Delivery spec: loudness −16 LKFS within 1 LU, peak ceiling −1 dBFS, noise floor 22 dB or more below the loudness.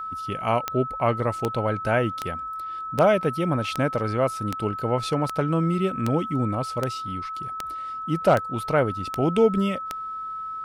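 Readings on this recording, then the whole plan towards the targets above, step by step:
number of clicks 13; interfering tone 1,300 Hz; level of the tone −30 dBFS; integrated loudness −25.0 LKFS; sample peak −7.0 dBFS; target loudness −16.0 LKFS
→ click removal
notch filter 1,300 Hz, Q 30
level +9 dB
brickwall limiter −1 dBFS

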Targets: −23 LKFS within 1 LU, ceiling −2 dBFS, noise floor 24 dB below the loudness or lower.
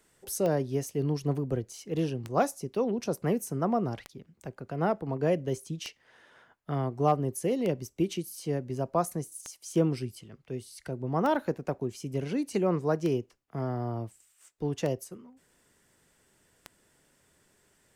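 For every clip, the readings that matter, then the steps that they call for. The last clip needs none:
number of clicks 10; integrated loudness −31.0 LKFS; sample peak −12.0 dBFS; target loudness −23.0 LKFS
→ click removal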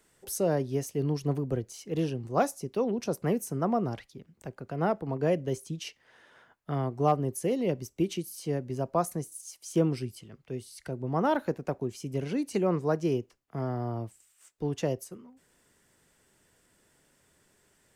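number of clicks 0; integrated loudness −31.0 LKFS; sample peak −12.0 dBFS; target loudness −23.0 LKFS
→ level +8 dB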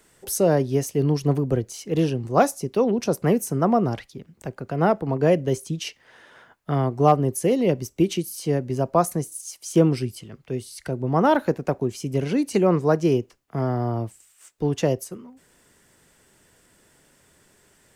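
integrated loudness −23.0 LKFS; sample peak −4.0 dBFS; background noise floor −60 dBFS

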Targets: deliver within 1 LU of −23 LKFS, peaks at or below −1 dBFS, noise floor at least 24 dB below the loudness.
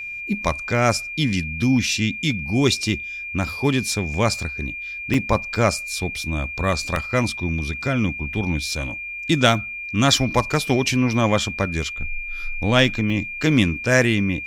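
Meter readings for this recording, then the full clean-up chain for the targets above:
number of dropouts 4; longest dropout 2.0 ms; interfering tone 2,400 Hz; level of the tone −29 dBFS; integrated loudness −21.5 LKFS; sample peak −2.5 dBFS; target loudness −23.0 LKFS
→ repair the gap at 0:04.14/0:05.14/0:06.96/0:13.10, 2 ms
notch filter 2,400 Hz, Q 30
level −1.5 dB

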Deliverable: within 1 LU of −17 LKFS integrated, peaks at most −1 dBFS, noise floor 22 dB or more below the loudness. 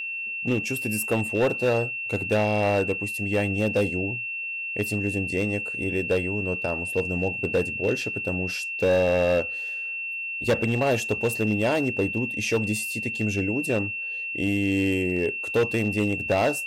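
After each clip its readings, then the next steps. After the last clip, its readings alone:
share of clipped samples 1.8%; peaks flattened at −16.5 dBFS; interfering tone 2,700 Hz; level of the tone −29 dBFS; integrated loudness −25.0 LKFS; sample peak −16.5 dBFS; target loudness −17.0 LKFS
→ clipped peaks rebuilt −16.5 dBFS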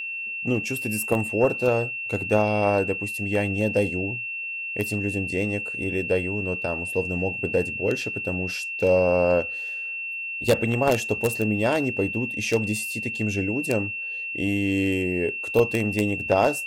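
share of clipped samples 0.0%; interfering tone 2,700 Hz; level of the tone −29 dBFS
→ notch filter 2,700 Hz, Q 30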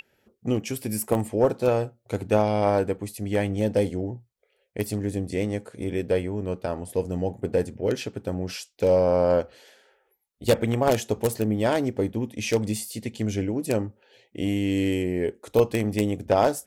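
interfering tone none found; integrated loudness −26.0 LKFS; sample peak −7.0 dBFS; target loudness −17.0 LKFS
→ level +9 dB
brickwall limiter −1 dBFS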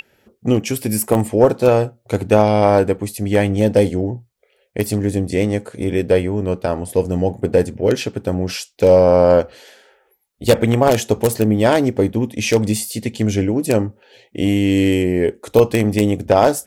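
integrated loudness −17.0 LKFS; sample peak −1.0 dBFS; background noise floor −61 dBFS

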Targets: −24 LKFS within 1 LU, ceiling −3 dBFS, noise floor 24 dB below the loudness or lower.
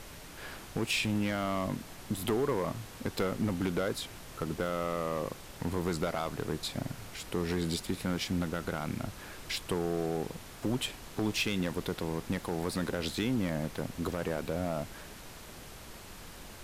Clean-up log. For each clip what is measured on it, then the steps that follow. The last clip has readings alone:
share of clipped samples 1.0%; peaks flattened at −23.0 dBFS; background noise floor −48 dBFS; target noise floor −58 dBFS; integrated loudness −34.0 LKFS; sample peak −23.0 dBFS; target loudness −24.0 LKFS
→ clipped peaks rebuilt −23 dBFS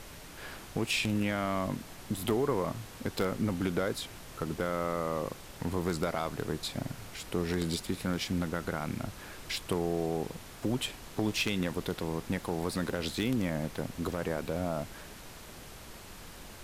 share of clipped samples 0.0%; background noise floor −48 dBFS; target noise floor −58 dBFS
→ noise reduction from a noise print 10 dB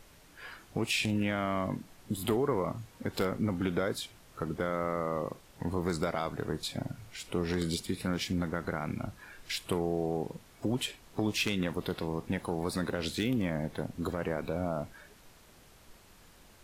background noise floor −58 dBFS; integrated loudness −33.5 LKFS; sample peak −14.0 dBFS; target loudness −24.0 LKFS
→ level +9.5 dB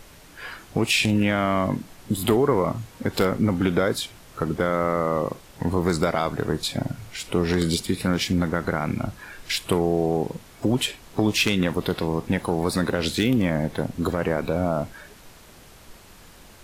integrated loudness −24.0 LKFS; sample peak −4.5 dBFS; background noise floor −48 dBFS

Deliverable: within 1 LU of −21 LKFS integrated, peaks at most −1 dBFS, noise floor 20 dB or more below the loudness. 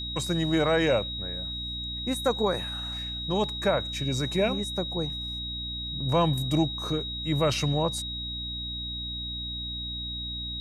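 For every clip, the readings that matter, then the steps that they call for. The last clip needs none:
mains hum 60 Hz; hum harmonics up to 300 Hz; level of the hum −37 dBFS; interfering tone 3,800 Hz; level of the tone −33 dBFS; integrated loudness −28.5 LKFS; sample peak −12.0 dBFS; target loudness −21.0 LKFS
→ mains-hum notches 60/120/180/240/300 Hz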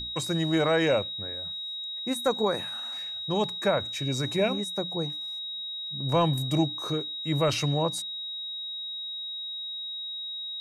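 mains hum none found; interfering tone 3,800 Hz; level of the tone −33 dBFS
→ notch filter 3,800 Hz, Q 30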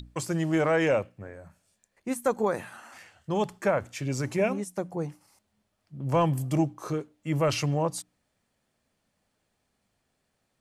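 interfering tone none found; integrated loudness −28.5 LKFS; sample peak −13.0 dBFS; target loudness −21.0 LKFS
→ level +7.5 dB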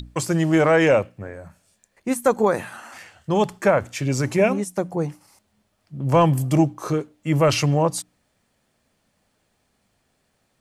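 integrated loudness −21.0 LKFS; sample peak −5.5 dBFS; background noise floor −69 dBFS

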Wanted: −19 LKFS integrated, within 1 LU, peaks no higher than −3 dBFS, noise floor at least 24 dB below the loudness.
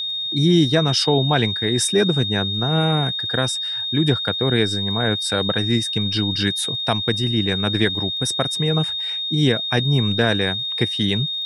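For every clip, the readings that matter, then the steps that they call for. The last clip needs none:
crackle rate 36 per second; interfering tone 3,700 Hz; level of the tone −23 dBFS; integrated loudness −19.5 LKFS; sample peak −3.0 dBFS; target loudness −19.0 LKFS
→ click removal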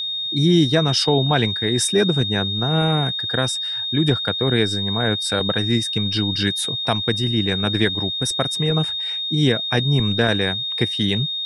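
crackle rate 0 per second; interfering tone 3,700 Hz; level of the tone −23 dBFS
→ notch filter 3,700 Hz, Q 30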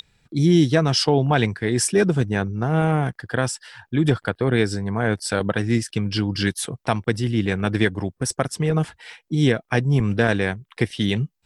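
interfering tone none found; integrated loudness −22.0 LKFS; sample peak −4.0 dBFS; target loudness −19.0 LKFS
→ level +3 dB
brickwall limiter −3 dBFS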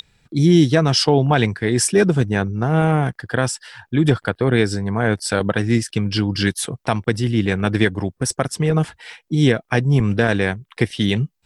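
integrated loudness −19.0 LKFS; sample peak −3.0 dBFS; background noise floor −70 dBFS

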